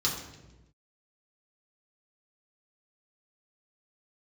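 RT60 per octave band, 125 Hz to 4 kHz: 1.4, 1.3, 1.2, 0.90, 0.90, 0.85 seconds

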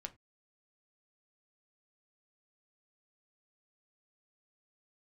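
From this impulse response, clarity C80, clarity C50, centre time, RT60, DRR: 28.5 dB, 20.0 dB, 5 ms, non-exponential decay, 6.5 dB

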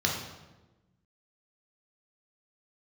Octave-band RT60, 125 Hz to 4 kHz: 1.6, 1.6, 1.2, 1.0, 0.90, 0.80 seconds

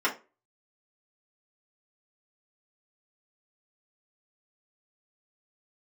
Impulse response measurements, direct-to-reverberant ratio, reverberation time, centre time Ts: −5.5 dB, 0.30 s, 14 ms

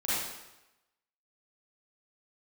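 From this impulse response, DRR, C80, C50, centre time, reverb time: −11.0 dB, 0.0 dB, −5.0 dB, 97 ms, 0.95 s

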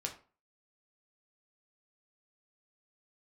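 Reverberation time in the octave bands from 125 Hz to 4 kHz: 0.35, 0.40, 0.40, 0.40, 0.30, 0.25 seconds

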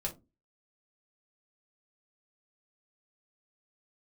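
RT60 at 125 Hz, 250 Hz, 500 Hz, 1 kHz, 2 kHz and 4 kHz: 0.35, 0.40, 0.25, 0.20, 0.15, 0.15 seconds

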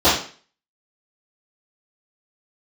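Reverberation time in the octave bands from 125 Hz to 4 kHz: 0.45, 0.45, 0.40, 0.40, 0.45, 0.40 seconds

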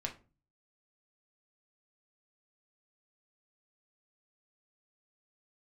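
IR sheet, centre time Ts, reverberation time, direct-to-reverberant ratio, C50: 11 ms, 0.35 s, 1.0 dB, 13.0 dB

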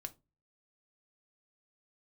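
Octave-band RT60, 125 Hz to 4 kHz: 0.50, 0.40, 0.30, 0.20, 0.20, 0.15 seconds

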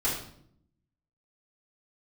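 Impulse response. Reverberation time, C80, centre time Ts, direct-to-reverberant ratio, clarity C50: 0.65 s, 7.5 dB, 41 ms, −9.5 dB, 3.5 dB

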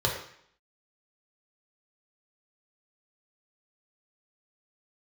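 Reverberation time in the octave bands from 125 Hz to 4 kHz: 0.60, 0.65, 0.60, 0.65, 0.65, 0.65 seconds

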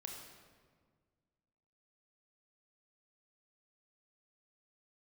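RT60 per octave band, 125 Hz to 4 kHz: 2.2, 2.1, 1.8, 1.6, 1.3, 1.1 seconds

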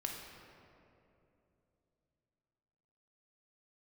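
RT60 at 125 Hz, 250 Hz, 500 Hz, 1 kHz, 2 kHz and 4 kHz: 4.0, 3.6, 3.3, 2.5, 2.1, 1.4 seconds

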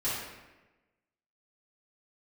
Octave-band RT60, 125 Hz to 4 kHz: 1.2, 1.2, 1.2, 1.1, 1.1, 0.80 seconds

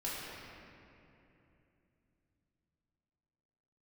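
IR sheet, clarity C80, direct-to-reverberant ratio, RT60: −1.0 dB, −9.0 dB, 2.9 s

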